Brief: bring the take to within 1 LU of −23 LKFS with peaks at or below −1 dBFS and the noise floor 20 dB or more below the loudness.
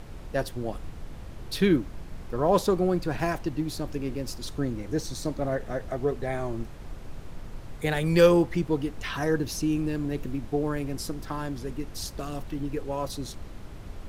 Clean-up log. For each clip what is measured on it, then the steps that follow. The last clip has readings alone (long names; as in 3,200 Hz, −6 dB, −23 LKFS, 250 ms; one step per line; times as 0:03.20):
background noise floor −42 dBFS; target noise floor −49 dBFS; integrated loudness −28.5 LKFS; sample peak −8.5 dBFS; target loudness −23.0 LKFS
→ noise reduction from a noise print 7 dB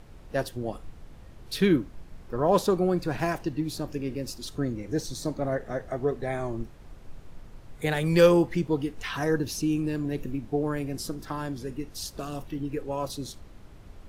background noise floor −48 dBFS; target noise floor −49 dBFS
→ noise reduction from a noise print 6 dB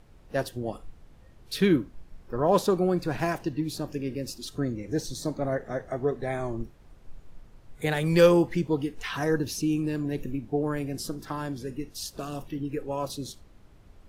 background noise floor −54 dBFS; integrated loudness −28.5 LKFS; sample peak −8.5 dBFS; target loudness −23.0 LKFS
→ level +5.5 dB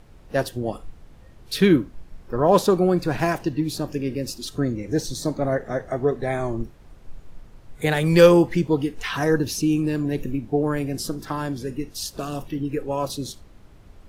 integrated loudness −23.0 LKFS; sample peak −3.0 dBFS; background noise floor −49 dBFS